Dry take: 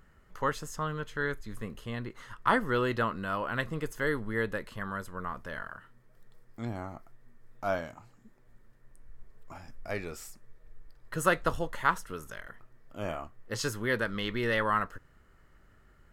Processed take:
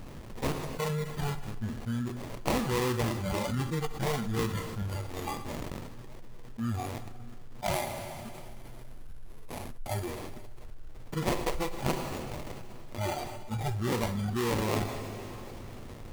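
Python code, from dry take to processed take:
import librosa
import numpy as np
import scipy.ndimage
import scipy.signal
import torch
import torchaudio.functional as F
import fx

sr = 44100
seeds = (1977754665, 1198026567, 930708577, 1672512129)

y = fx.lower_of_two(x, sr, delay_ms=8.3)
y = fx.high_shelf(y, sr, hz=6300.0, db=-11.0)
y = fx.sample_hold(y, sr, seeds[0], rate_hz=1500.0, jitter_pct=20)
y = fx.noise_reduce_blind(y, sr, reduce_db=16)
y = fx.peak_eq(y, sr, hz=11000.0, db=9.0, octaves=0.43, at=(7.73, 10.11))
y = fx.rev_double_slope(y, sr, seeds[1], early_s=0.86, late_s=2.3, knee_db=-18, drr_db=17.5)
y = fx.env_flatten(y, sr, amount_pct=70)
y = F.gain(torch.from_numpy(y), -4.0).numpy()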